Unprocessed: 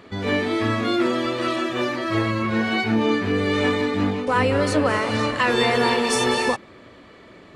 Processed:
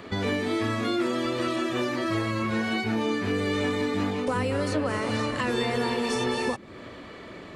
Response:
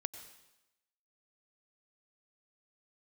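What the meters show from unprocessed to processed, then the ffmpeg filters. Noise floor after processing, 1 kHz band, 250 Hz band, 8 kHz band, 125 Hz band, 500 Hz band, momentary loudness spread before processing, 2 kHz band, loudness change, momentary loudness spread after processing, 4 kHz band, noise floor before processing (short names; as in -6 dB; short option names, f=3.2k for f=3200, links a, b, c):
-43 dBFS, -7.0 dB, -4.5 dB, -7.5 dB, -4.5 dB, -5.5 dB, 5 LU, -7.0 dB, -6.0 dB, 4 LU, -6.5 dB, -47 dBFS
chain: -filter_complex "[0:a]acrossover=split=390|5900[a][b][c];[a]acompressor=threshold=-33dB:ratio=4[d];[b]acompressor=threshold=-35dB:ratio=4[e];[c]acompressor=threshold=-52dB:ratio=4[f];[d][e][f]amix=inputs=3:normalize=0,volume=4dB"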